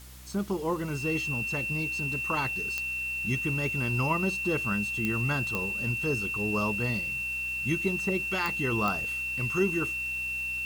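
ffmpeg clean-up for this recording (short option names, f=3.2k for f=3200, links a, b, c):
-af "adeclick=t=4,bandreject=f=63.3:t=h:w=4,bandreject=f=126.6:t=h:w=4,bandreject=f=189.9:t=h:w=4,bandreject=f=253.2:t=h:w=4,bandreject=f=316.5:t=h:w=4,bandreject=f=2.7k:w=30,afwtdn=0.0028"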